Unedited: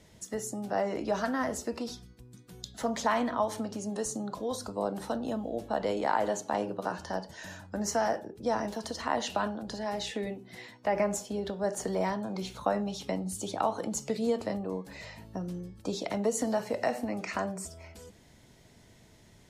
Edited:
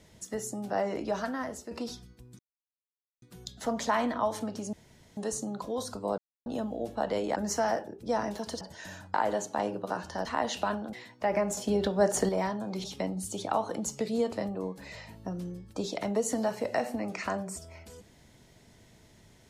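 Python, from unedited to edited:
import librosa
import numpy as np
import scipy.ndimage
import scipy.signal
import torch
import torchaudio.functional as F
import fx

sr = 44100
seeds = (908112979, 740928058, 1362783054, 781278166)

y = fx.edit(x, sr, fx.fade_out_to(start_s=0.94, length_s=0.77, floor_db=-8.5),
    fx.insert_silence(at_s=2.39, length_s=0.83),
    fx.insert_room_tone(at_s=3.9, length_s=0.44),
    fx.silence(start_s=4.91, length_s=0.28),
    fx.swap(start_s=6.09, length_s=1.11, other_s=7.73, other_length_s=1.25),
    fx.cut(start_s=9.66, length_s=0.9),
    fx.clip_gain(start_s=11.2, length_s=0.72, db=6.5),
    fx.cut(start_s=12.47, length_s=0.46), tone=tone)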